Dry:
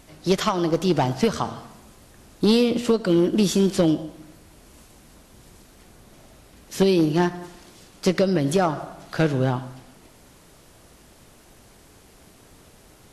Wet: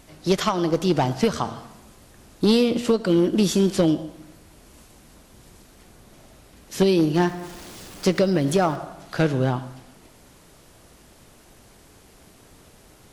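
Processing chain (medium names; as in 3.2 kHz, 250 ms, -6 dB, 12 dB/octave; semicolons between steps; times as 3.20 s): 7.14–8.76 s: jump at every zero crossing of -39 dBFS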